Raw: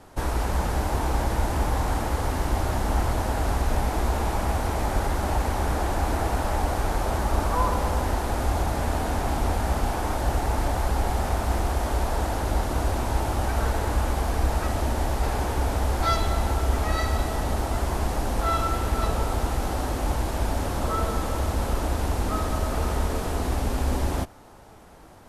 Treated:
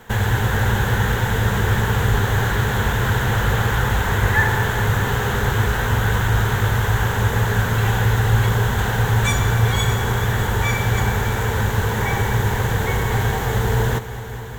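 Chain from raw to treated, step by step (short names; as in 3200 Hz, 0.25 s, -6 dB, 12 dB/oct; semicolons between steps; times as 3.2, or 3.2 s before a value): ripple EQ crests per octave 1, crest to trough 9 dB; multi-head echo 0.356 s, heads all three, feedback 56%, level -18 dB; speed mistake 45 rpm record played at 78 rpm; gain +4 dB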